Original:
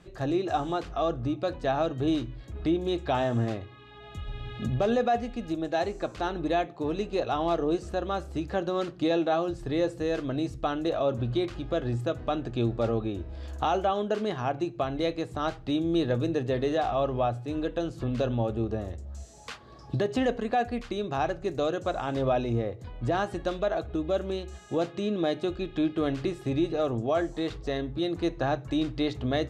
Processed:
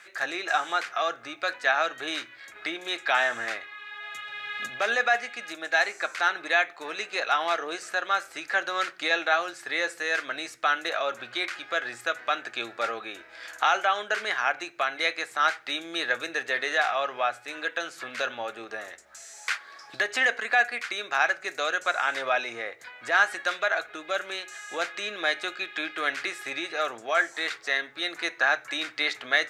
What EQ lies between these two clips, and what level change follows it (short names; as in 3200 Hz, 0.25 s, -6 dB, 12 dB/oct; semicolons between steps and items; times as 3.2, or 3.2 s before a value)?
HPF 980 Hz 12 dB/oct; band shelf 1800 Hz +10.5 dB 1 oct; high shelf 4700 Hz +7.5 dB; +5.5 dB